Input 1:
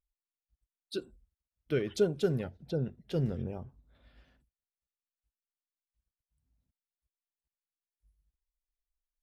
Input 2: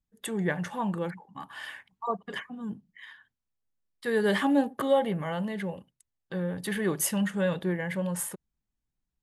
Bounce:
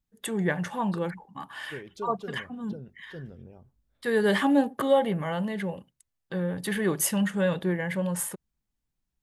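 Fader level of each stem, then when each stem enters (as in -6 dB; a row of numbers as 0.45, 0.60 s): -10.5, +2.0 dB; 0.00, 0.00 s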